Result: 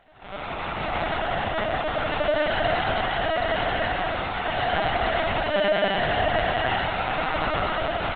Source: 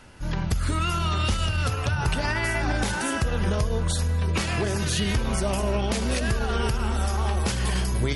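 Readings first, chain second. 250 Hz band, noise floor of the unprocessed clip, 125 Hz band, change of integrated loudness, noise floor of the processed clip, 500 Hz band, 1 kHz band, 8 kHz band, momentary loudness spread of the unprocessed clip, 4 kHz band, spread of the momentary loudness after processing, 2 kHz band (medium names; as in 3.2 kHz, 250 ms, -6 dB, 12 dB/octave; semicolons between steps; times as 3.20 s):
-4.5 dB, -28 dBFS, -10.0 dB, +1.0 dB, -34 dBFS, +6.0 dB, +7.0 dB, under -40 dB, 1 LU, +1.5 dB, 5 LU, +4.5 dB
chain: sample-and-hold 37×; brick-wall FIR high-pass 520 Hz; feedback delay 79 ms, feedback 22%, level -13 dB; algorithmic reverb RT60 2.6 s, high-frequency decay 0.7×, pre-delay 45 ms, DRR -9 dB; LPC vocoder at 8 kHz pitch kept; Opus 24 kbps 48 kHz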